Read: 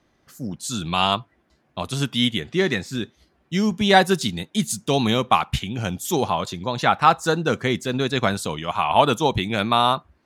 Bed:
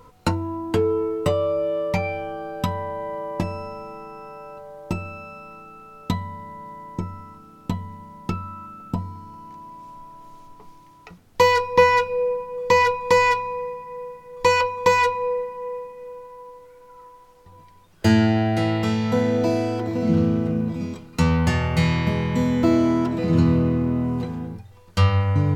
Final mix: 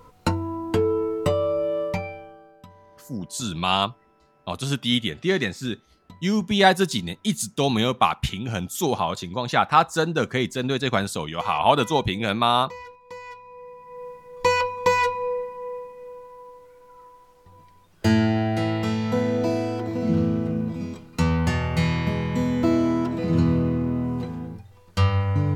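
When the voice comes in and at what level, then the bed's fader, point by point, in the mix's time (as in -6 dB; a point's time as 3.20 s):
2.70 s, -1.5 dB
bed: 1.83 s -1 dB
2.65 s -23 dB
13.22 s -23 dB
14.07 s -2.5 dB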